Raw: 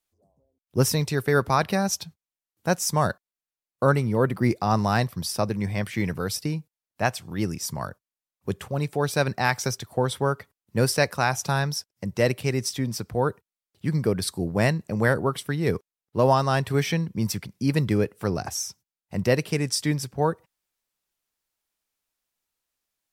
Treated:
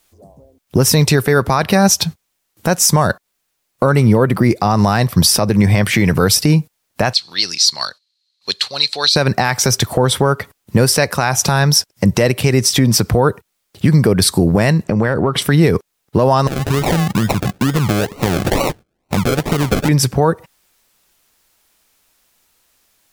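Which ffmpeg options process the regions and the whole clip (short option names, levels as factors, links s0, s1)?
-filter_complex "[0:a]asettb=1/sr,asplit=3[s0][s1][s2];[s0]atrim=end=7.134[s3];[s1]atrim=start=7.13:end=9.16,asetpts=PTS-STARTPTS,afade=t=in:d=0.004:c=qsin,afade=t=out:st=2.026:d=0.004:c=qsin,lowpass=f=4200:t=q:w=14,aderivative[s4];[s2]atrim=start=9.156[s5];[s3][s4]acrossfade=d=0.004:c1=hsin:c2=qsin[s6];[s6][s5]acrossfade=d=0.004:c1=qsin:c2=hsin,asettb=1/sr,asplit=3[s7][s8][s9];[s7]atrim=end=14.844[s10];[s8]atrim=start=14.84:end=15.42,asetpts=PTS-STARTPTS,afade=t=in:d=0.004:c=qsin,afade=t=out:st=0.576:d=0.004:c=qsin,aemphasis=mode=reproduction:type=50fm,acompressor=threshold=0.0224:ratio=16:attack=3.2:release=140:knee=1:detection=peak[s11];[s9]atrim=start=15.416[s12];[s10][s11]acrossfade=d=0.004:c1=hsin:c2=qsin[s13];[s13][s12]acrossfade=d=0.004:c1=qsin:c2=hsin,asettb=1/sr,asplit=3[s14][s15][s16];[s14]atrim=end=16.474[s17];[s15]atrim=start=16.47:end=19.89,asetpts=PTS-STARTPTS,afade=t=in:d=0.004:c=qsin,afade=t=out:st=3.416:d=0.004:c=qsin,acompressor=threshold=0.02:ratio=12:attack=3.2:release=140:knee=1:detection=peak,acrusher=samples=37:mix=1:aa=0.000001:lfo=1:lforange=22.2:lforate=2.2[s18];[s16]atrim=start=19.886[s19];[s17][s18]acrossfade=d=0.004:c1=hsin:c2=qsin[s20];[s20][s19]acrossfade=d=0.004:c1=qsin:c2=hsin,acompressor=threshold=0.0355:ratio=6,alimiter=level_in=15.8:limit=0.891:release=50:level=0:latency=1,volume=0.891"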